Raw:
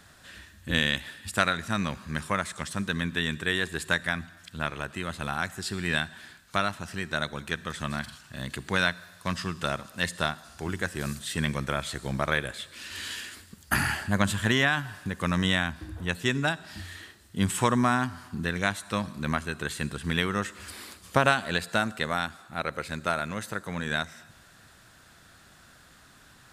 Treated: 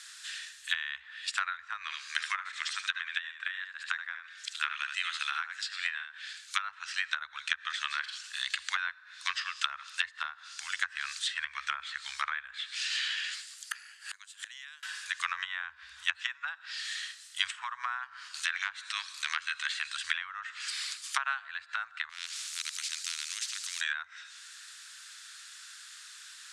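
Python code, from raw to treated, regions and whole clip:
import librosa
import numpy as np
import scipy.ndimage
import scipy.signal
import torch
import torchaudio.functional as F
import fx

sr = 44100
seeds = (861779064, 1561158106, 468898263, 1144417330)

y = fx.chain(x, sr, fx.highpass(hz=1200.0, slope=6),
    fx.echo_single(ms=74, db=-6.5), at=(1.82, 6.62))
y = fx.chain(y, sr, fx.highpass(hz=370.0, slope=12),
    fx.gate_flip(shuts_db=-23.0, range_db=-28), at=(13.31, 14.83))
y = fx.chain(y, sr, fx.transient(attack_db=-11, sustain_db=-3),
    fx.band_squash(depth_pct=70), at=(18.34, 19.85))
y = fx.chain(y, sr, fx.differentiator(),
    fx.spectral_comp(ratio=4.0), at=(22.09, 23.81))
y = scipy.signal.sosfilt(scipy.signal.cheby2(4, 70, [160.0, 420.0], 'bandstop', fs=sr, output='sos'), y)
y = fx.env_lowpass_down(y, sr, base_hz=860.0, full_db=-29.0)
y = fx.weighting(y, sr, curve='ITU-R 468')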